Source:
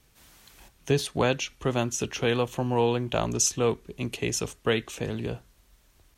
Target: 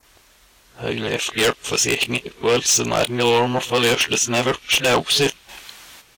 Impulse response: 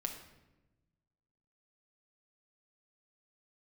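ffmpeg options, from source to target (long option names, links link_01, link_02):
-filter_complex "[0:a]areverse,asoftclip=type=tanh:threshold=-15dB,asplit=2[link_01][link_02];[link_02]highpass=frequency=720:poles=1,volume=15dB,asoftclip=type=tanh:threshold=-11dB[link_03];[link_01][link_03]amix=inputs=2:normalize=0,lowpass=frequency=6400:poles=1,volume=-6dB,adynamicequalizer=threshold=0.01:dfrequency=3100:dqfactor=1.2:tfrequency=3100:tqfactor=1.2:attack=5:release=100:ratio=0.375:range=3.5:mode=boostabove:tftype=bell,aeval=exprs='0.168*(abs(mod(val(0)/0.168+3,4)-2)-1)':channel_layout=same,asplit=2[link_04][link_05];[link_05]adelay=25,volume=-14dB[link_06];[link_04][link_06]amix=inputs=2:normalize=0,volume=4.5dB"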